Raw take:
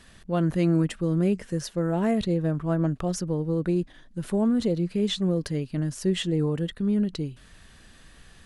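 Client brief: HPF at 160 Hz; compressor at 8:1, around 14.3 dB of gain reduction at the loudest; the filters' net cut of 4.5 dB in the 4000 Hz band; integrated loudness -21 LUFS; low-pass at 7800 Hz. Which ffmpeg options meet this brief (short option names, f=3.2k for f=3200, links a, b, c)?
-af "highpass=160,lowpass=7.8k,equalizer=f=4k:t=o:g=-5.5,acompressor=threshold=-36dB:ratio=8,volume=19.5dB"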